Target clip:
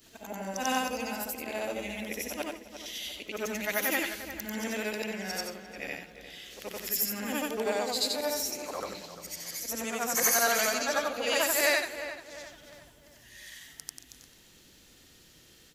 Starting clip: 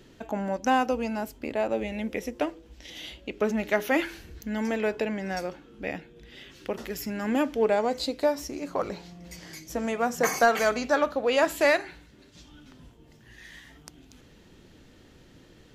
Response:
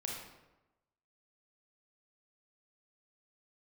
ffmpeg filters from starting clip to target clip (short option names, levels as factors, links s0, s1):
-filter_complex "[0:a]afftfilt=real='re':imag='-im':win_size=8192:overlap=0.75,crystalizer=i=7.5:c=0,asplit=2[s0][s1];[s1]adelay=349,lowpass=f=2500:p=1,volume=0.282,asplit=2[s2][s3];[s3]adelay=349,lowpass=f=2500:p=1,volume=0.46,asplit=2[s4][s5];[s5]adelay=349,lowpass=f=2500:p=1,volume=0.46,asplit=2[s6][s7];[s7]adelay=349,lowpass=f=2500:p=1,volume=0.46,asplit=2[s8][s9];[s9]adelay=349,lowpass=f=2500:p=1,volume=0.46[s10];[s0][s2][s4][s6][s8][s10]amix=inputs=6:normalize=0,volume=0.596"